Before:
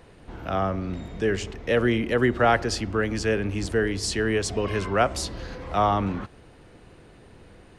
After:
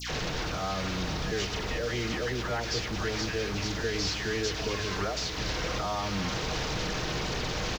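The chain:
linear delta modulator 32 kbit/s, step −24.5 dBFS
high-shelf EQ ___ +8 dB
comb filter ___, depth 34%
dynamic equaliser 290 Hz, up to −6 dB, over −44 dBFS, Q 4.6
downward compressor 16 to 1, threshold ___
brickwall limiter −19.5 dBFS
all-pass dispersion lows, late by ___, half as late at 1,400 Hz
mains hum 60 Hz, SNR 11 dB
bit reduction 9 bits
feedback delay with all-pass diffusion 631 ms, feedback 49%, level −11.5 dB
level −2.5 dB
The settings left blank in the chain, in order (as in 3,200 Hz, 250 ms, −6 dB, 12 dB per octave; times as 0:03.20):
3,700 Hz, 6.5 ms, −23 dBFS, 104 ms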